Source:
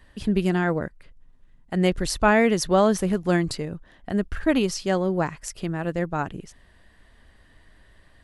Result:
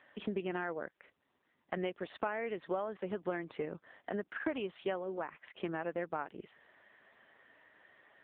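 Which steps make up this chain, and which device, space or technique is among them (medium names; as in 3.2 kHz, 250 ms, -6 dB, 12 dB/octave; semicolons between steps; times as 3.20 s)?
voicemail (band-pass 390–3000 Hz; compression 8:1, threshold -34 dBFS, peak gain reduction 20 dB; trim +1.5 dB; AMR-NB 6.7 kbps 8 kHz)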